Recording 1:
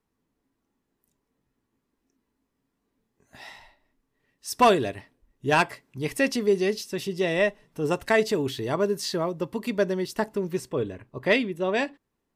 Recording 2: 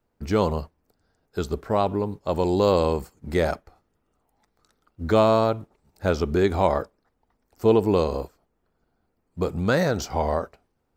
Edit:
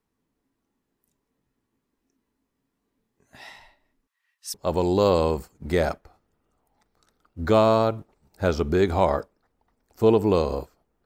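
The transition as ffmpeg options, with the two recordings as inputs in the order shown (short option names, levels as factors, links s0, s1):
-filter_complex "[0:a]asettb=1/sr,asplit=3[s0][s1][s2];[s0]atrim=end=4.074[s3];[s1]atrim=start=4.07:end=4.54,asetpts=PTS-STARTPTS,afade=t=in:d=0.004:c=qsin,afade=t=out:st=0.466:d=0.004:c=qsin,highpass=f=1100:w=0.5412,highpass=f=1100:w=1.3066[s4];[s2]atrim=start=4.536[s5];[s3][s4]acrossfade=d=0.004:c1=hsin:c2=qsin[s6];[s6][s5]acrossfade=d=0.004:c1=qsin:c2=hsin,apad=whole_dur=11.05,atrim=end=11.05,atrim=end=4.542[s7];[1:a]atrim=start=2.158:end=8.67[s8];[s7][s8]acrossfade=d=0.004:c1=hsin:c2=hsin"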